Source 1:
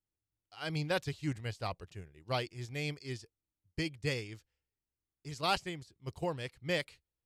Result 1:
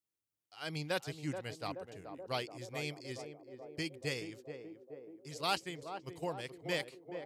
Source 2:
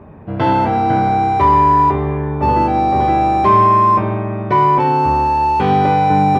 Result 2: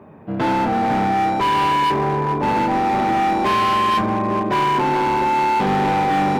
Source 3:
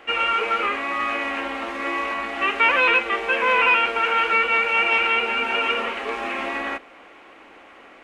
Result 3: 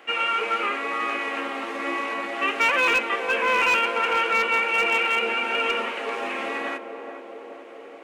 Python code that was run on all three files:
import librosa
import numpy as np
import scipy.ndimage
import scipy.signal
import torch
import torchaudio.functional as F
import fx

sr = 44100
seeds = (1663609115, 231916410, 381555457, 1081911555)

p1 = fx.high_shelf(x, sr, hz=6200.0, db=6.0)
p2 = p1 + fx.echo_banded(p1, sr, ms=428, feedback_pct=77, hz=450.0, wet_db=-6, dry=0)
p3 = fx.dynamic_eq(p2, sr, hz=220.0, q=1.3, threshold_db=-33.0, ratio=4.0, max_db=6)
p4 = scipy.signal.sosfilt(scipy.signal.butter(2, 150.0, 'highpass', fs=sr, output='sos'), p3)
p5 = np.clip(p4, -10.0 ** (-12.5 / 20.0), 10.0 ** (-12.5 / 20.0))
y = p5 * 10.0 ** (-3.0 / 20.0)